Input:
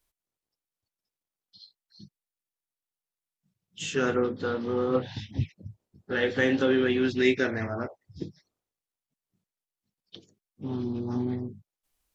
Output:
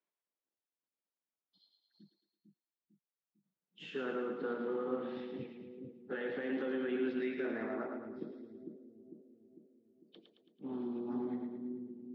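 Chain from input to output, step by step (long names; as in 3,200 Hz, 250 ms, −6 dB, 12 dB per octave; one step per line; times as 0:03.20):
high-pass filter 210 Hz 24 dB per octave
brickwall limiter −22 dBFS, peak gain reduction 10 dB
high-frequency loss of the air 430 metres
echo with a time of its own for lows and highs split 400 Hz, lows 450 ms, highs 110 ms, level −5 dB
level −6 dB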